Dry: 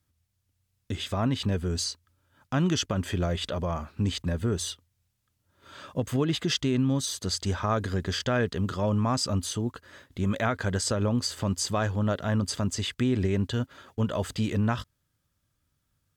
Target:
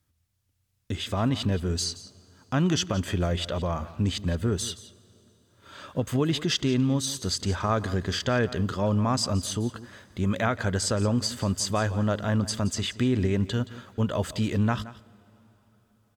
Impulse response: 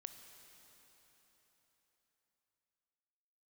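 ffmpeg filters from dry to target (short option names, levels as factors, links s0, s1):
-filter_complex "[0:a]aecho=1:1:173:0.15,asplit=2[s0][s1];[1:a]atrim=start_sample=2205[s2];[s1][s2]afir=irnorm=-1:irlink=0,volume=0.299[s3];[s0][s3]amix=inputs=2:normalize=0"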